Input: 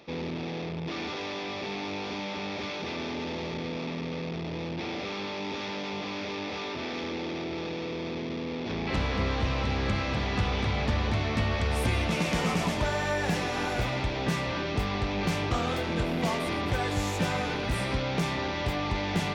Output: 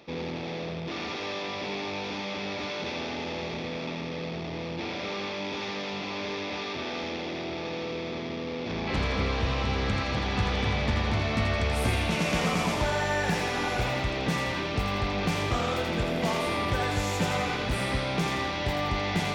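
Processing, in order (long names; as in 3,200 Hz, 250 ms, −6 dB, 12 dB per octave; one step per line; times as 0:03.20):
feedback echo with a high-pass in the loop 83 ms, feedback 52%, high-pass 420 Hz, level −4 dB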